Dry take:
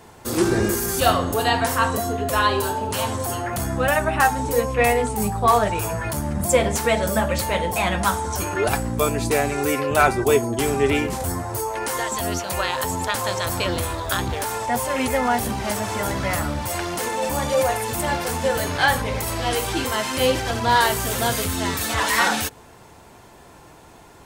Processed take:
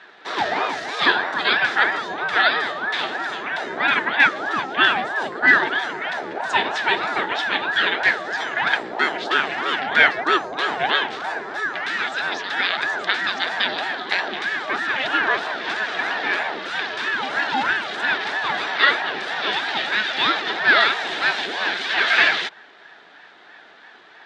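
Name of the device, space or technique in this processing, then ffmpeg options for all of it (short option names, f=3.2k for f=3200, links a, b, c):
voice changer toy: -af "aeval=exprs='val(0)*sin(2*PI*560*n/s+560*0.55/3.1*sin(2*PI*3.1*n/s))':c=same,highpass=450,equalizer=f=530:t=q:w=4:g=-9,equalizer=f=1.1k:t=q:w=4:g=-7,equalizer=f=1.7k:t=q:w=4:g=9,equalizer=f=3.6k:t=q:w=4:g=8,lowpass=f=4.3k:w=0.5412,lowpass=f=4.3k:w=1.3066,volume=4dB"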